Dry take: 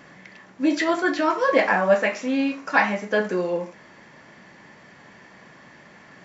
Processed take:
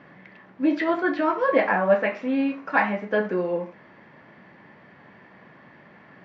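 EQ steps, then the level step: HPF 63 Hz; air absorption 350 m; 0.0 dB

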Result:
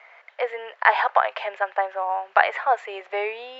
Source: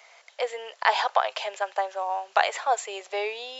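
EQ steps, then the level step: synth low-pass 1900 Hz, resonance Q 1.7; +2.0 dB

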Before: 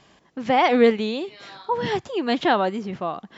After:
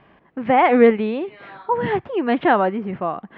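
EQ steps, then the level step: LPF 2400 Hz 24 dB/oct; +3.5 dB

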